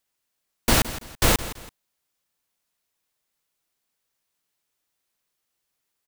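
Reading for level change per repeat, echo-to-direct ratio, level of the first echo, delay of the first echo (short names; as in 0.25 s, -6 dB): -9.5 dB, -14.0 dB, -14.5 dB, 0.166 s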